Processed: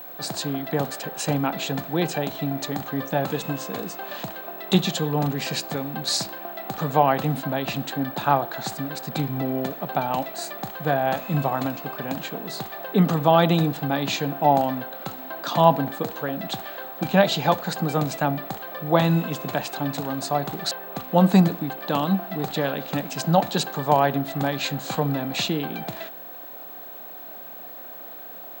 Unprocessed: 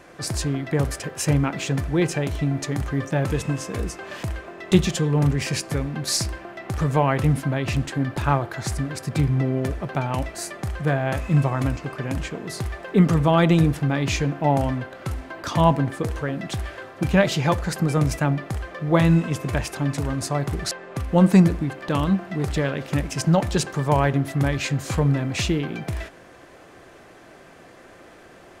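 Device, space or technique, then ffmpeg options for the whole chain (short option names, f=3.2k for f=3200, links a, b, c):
old television with a line whistle: -af "highpass=f=170:w=0.5412,highpass=f=170:w=1.3066,equalizer=f=360:t=q:w=4:g=-5,equalizer=f=760:t=q:w=4:g=8,equalizer=f=2.1k:t=q:w=4:g=-6,equalizer=f=3.9k:t=q:w=4:g=8,equalizer=f=5.6k:t=q:w=4:g=-6,lowpass=f=8.1k:w=0.5412,lowpass=f=8.1k:w=1.3066,aeval=exprs='val(0)+0.0141*sin(2*PI*15734*n/s)':c=same"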